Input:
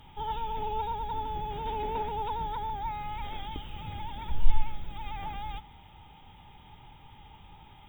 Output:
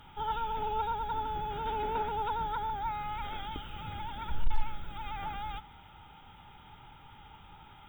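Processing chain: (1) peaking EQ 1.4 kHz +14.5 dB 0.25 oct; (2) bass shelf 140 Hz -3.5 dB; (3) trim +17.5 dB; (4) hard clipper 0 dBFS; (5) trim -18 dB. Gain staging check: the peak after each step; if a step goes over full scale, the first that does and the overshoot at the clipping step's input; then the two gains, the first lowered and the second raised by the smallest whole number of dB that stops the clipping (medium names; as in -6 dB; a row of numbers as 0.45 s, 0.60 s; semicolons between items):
-7.0 dBFS, -10.5 dBFS, +7.0 dBFS, 0.0 dBFS, -18.0 dBFS; step 3, 7.0 dB; step 3 +10.5 dB, step 5 -11 dB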